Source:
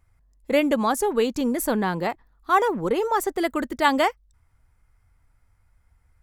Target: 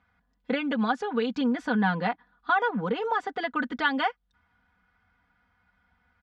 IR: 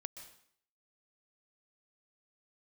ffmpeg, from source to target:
-af "acompressor=threshold=-27dB:ratio=4,highpass=130,equalizer=frequency=190:width_type=q:width=4:gain=7,equalizer=frequency=350:width_type=q:width=4:gain=-7,equalizer=frequency=550:width_type=q:width=4:gain=-4,equalizer=frequency=810:width_type=q:width=4:gain=4,equalizer=frequency=1500:width_type=q:width=4:gain=9,equalizer=frequency=3300:width_type=q:width=4:gain=5,lowpass=frequency=4300:width=0.5412,lowpass=frequency=4300:width=1.3066,aecho=1:1:4.1:0.78"

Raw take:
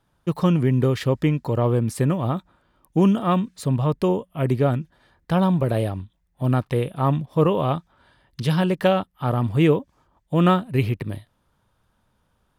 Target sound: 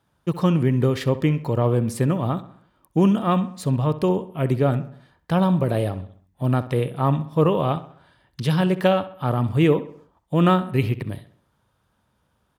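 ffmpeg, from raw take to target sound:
ffmpeg -i in.wav -filter_complex "[0:a]highpass=56,asplit=2[link_01][link_02];[link_02]adelay=65,lowpass=frequency=4000:poles=1,volume=-14.5dB,asplit=2[link_03][link_04];[link_04]adelay=65,lowpass=frequency=4000:poles=1,volume=0.49,asplit=2[link_05][link_06];[link_06]adelay=65,lowpass=frequency=4000:poles=1,volume=0.49,asplit=2[link_07][link_08];[link_08]adelay=65,lowpass=frequency=4000:poles=1,volume=0.49,asplit=2[link_09][link_10];[link_10]adelay=65,lowpass=frequency=4000:poles=1,volume=0.49[link_11];[link_03][link_05][link_07][link_09][link_11]amix=inputs=5:normalize=0[link_12];[link_01][link_12]amix=inputs=2:normalize=0" out.wav

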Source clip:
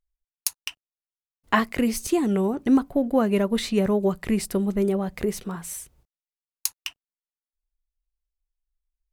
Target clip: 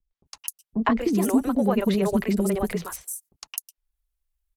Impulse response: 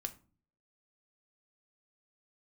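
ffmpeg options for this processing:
-filter_complex "[0:a]atempo=2,acrossover=split=220|1100[link_01][link_02][link_03];[link_01]acompressor=threshold=-32dB:ratio=4[link_04];[link_02]acompressor=threshold=-23dB:ratio=4[link_05];[link_03]acompressor=threshold=-38dB:ratio=4[link_06];[link_04][link_05][link_06]amix=inputs=3:normalize=0,equalizer=frequency=12000:width=0.85:gain=5.5,acrossover=split=400|5800[link_07][link_08][link_09];[link_08]adelay=110[link_10];[link_09]adelay=260[link_11];[link_07][link_10][link_11]amix=inputs=3:normalize=0,volume=5dB"

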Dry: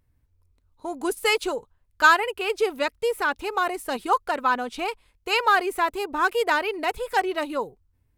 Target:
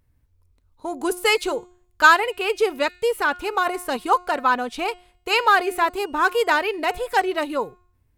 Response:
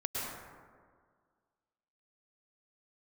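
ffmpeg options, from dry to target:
-af "bandreject=frequency=358.1:width_type=h:width=4,bandreject=frequency=716.2:width_type=h:width=4,bandreject=frequency=1074.3:width_type=h:width=4,bandreject=frequency=1432.4:width_type=h:width=4,bandreject=frequency=1790.5:width_type=h:width=4,bandreject=frequency=2148.6:width_type=h:width=4,bandreject=frequency=2506.7:width_type=h:width=4,bandreject=frequency=2864.8:width_type=h:width=4,bandreject=frequency=3222.9:width_type=h:width=4,bandreject=frequency=3581:width_type=h:width=4,bandreject=frequency=3939.1:width_type=h:width=4,bandreject=frequency=4297.2:width_type=h:width=4,bandreject=frequency=4655.3:width_type=h:width=4,bandreject=frequency=5013.4:width_type=h:width=4,bandreject=frequency=5371.5:width_type=h:width=4,bandreject=frequency=5729.6:width_type=h:width=4,bandreject=frequency=6087.7:width_type=h:width=4,bandreject=frequency=6445.8:width_type=h:width=4,bandreject=frequency=6803.9:width_type=h:width=4,bandreject=frequency=7162:width_type=h:width=4,bandreject=frequency=7520.1:width_type=h:width=4,bandreject=frequency=7878.2:width_type=h:width=4,bandreject=frequency=8236.3:width_type=h:width=4,bandreject=frequency=8594.4:width_type=h:width=4,volume=3dB"

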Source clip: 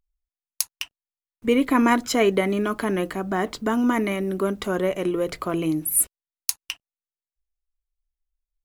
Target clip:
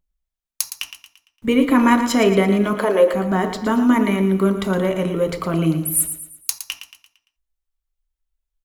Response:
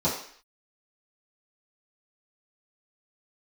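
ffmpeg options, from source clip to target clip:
-filter_complex "[0:a]asettb=1/sr,asplit=3[link_01][link_02][link_03];[link_01]atrim=end=2.734[link_04];[link_02]atrim=start=2.73:end=3.14,asetpts=PTS-STARTPTS,afade=type=in:duration=0.004:curve=qsin,afade=type=out:start_time=0.406:duration=0.004:curve=qsin,highpass=frequency=500:width_type=q:width=4.5[link_05];[link_03]atrim=start=3.136[link_06];[link_04][link_05]acrossfade=duration=0.004:curve1=hsin:curve2=qsin[link_07];[link_07][link_06]acrossfade=duration=0.004:curve1=qsin:curve2=hsin,aecho=1:1:114|228|342|456|570:0.316|0.136|0.0585|0.0251|0.0108,asplit=2[link_08][link_09];[1:a]atrim=start_sample=2205,atrim=end_sample=3969[link_10];[link_09][link_10]afir=irnorm=-1:irlink=0,volume=-19dB[link_11];[link_08][link_11]amix=inputs=2:normalize=0,volume=2.5dB"

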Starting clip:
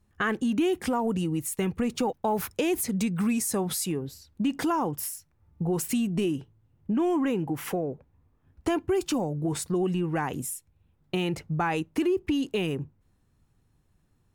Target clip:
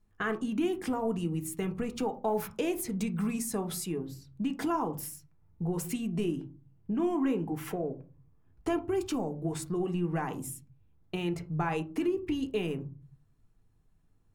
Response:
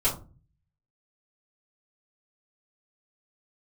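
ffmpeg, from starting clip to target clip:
-filter_complex "[0:a]asplit=2[link_01][link_02];[1:a]atrim=start_sample=2205,lowpass=2500[link_03];[link_02][link_03]afir=irnorm=-1:irlink=0,volume=-14dB[link_04];[link_01][link_04]amix=inputs=2:normalize=0,volume=-7dB"

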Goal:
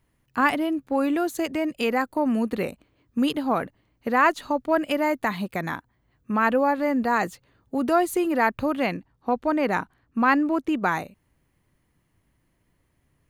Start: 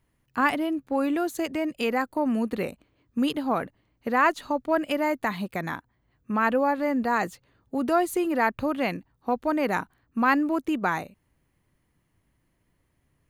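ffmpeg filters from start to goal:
ffmpeg -i in.wav -filter_complex "[0:a]asettb=1/sr,asplit=3[link_01][link_02][link_03];[link_01]atrim=end=8.864[link_04];[link_02]atrim=start=8.86:end=10.77,asetpts=PTS-STARTPTS,afade=type=in:duration=0.004:curve=qsin,afade=type=out:start_time=1.906:duration=0.004:curve=qsin,highshelf=frequency=8400:gain=-10[link_05];[link_03]atrim=start=10.766[link_06];[link_04][link_05]acrossfade=duration=0.004:curve1=hsin:curve2=qsin[link_07];[link_07][link_06]acrossfade=duration=0.004:curve1=qsin:curve2=hsin,volume=2dB" out.wav

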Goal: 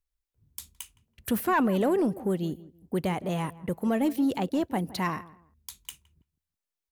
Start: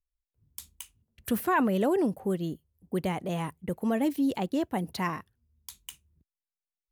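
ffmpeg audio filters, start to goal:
ffmpeg -i in.wav -filter_complex "[0:a]asplit=2[link_01][link_02];[link_02]asoftclip=type=tanh:threshold=-26dB,volume=-5dB[link_03];[link_01][link_03]amix=inputs=2:normalize=0,asplit=2[link_04][link_05];[link_05]adelay=165,lowpass=frequency=1400:poles=1,volume=-18dB,asplit=2[link_06][link_07];[link_07]adelay=165,lowpass=frequency=1400:poles=1,volume=0.27[link_08];[link_04][link_06][link_08]amix=inputs=3:normalize=0,volume=-1.5dB" out.wav

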